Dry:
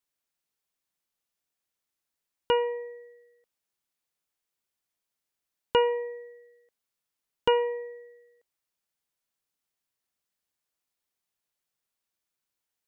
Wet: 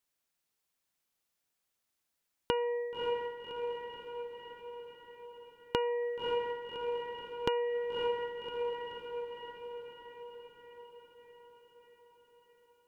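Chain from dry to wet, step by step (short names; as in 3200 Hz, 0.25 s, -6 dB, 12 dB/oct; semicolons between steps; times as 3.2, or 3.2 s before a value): diffused feedback echo 0.581 s, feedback 62%, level -9 dB; compressor 16:1, threshold -30 dBFS, peak gain reduction 13 dB; gain +2 dB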